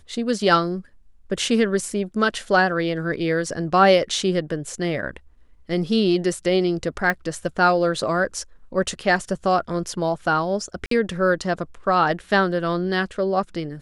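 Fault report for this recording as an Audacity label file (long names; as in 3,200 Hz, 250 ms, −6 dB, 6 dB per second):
7.100000	7.100000	click −9 dBFS
10.860000	10.910000	drop-out 53 ms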